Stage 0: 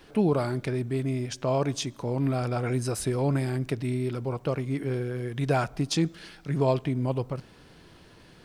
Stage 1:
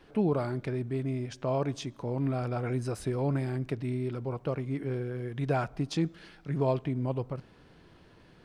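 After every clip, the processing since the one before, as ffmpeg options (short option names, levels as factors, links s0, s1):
-af "highshelf=f=4300:g=-11,volume=0.668"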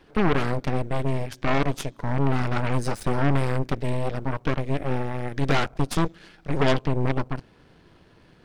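-af "aeval=exprs='0.158*(cos(1*acos(clip(val(0)/0.158,-1,1)))-cos(1*PI/2))+0.0158*(cos(3*acos(clip(val(0)/0.158,-1,1)))-cos(3*PI/2))+0.0447*(cos(8*acos(clip(val(0)/0.158,-1,1)))-cos(8*PI/2))':c=same,volume=1.78"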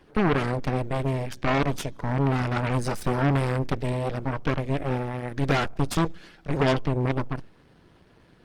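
-ar 48000 -c:a libopus -b:a 24k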